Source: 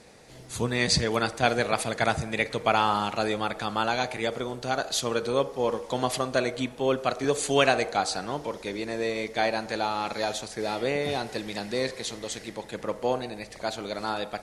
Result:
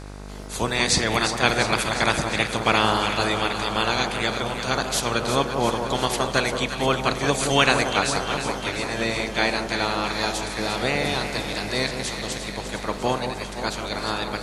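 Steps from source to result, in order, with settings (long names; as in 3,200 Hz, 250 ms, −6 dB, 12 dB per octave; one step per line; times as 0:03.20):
ceiling on every frequency bin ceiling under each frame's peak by 14 dB
hum with harmonics 50 Hz, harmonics 32, −41 dBFS −5 dB per octave
delay that swaps between a low-pass and a high-pass 175 ms, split 1,300 Hz, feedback 81%, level −7 dB
level +3 dB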